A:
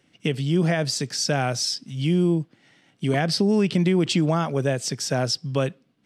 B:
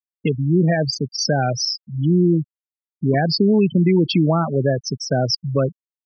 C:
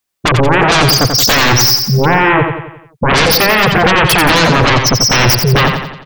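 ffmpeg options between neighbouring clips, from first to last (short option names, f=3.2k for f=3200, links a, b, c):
-af "acontrast=72,afftfilt=real='re*gte(hypot(re,im),0.251)':imag='im*gte(hypot(re,im),0.251)':win_size=1024:overlap=0.75,volume=-1.5dB"
-filter_complex "[0:a]aeval=exprs='0.473*sin(PI/2*7.94*val(0)/0.473)':c=same,asplit=2[a][b];[b]aecho=0:1:88|176|264|352|440|528:0.501|0.251|0.125|0.0626|0.0313|0.0157[c];[a][c]amix=inputs=2:normalize=0,volume=-1dB"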